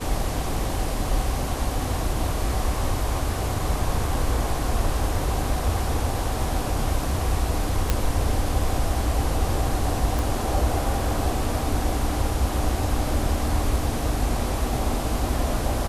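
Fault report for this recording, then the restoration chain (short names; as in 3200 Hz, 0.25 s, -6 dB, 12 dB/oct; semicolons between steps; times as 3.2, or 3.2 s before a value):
7.9 pop -6 dBFS
10.19 pop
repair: de-click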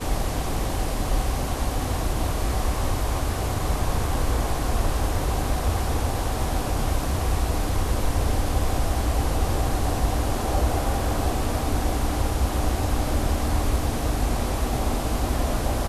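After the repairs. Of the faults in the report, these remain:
none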